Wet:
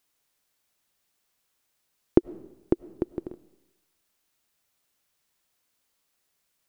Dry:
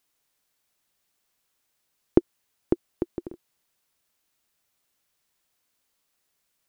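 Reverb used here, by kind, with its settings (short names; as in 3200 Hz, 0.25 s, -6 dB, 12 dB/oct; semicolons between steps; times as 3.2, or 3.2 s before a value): digital reverb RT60 0.96 s, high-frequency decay 0.95×, pre-delay 60 ms, DRR 19.5 dB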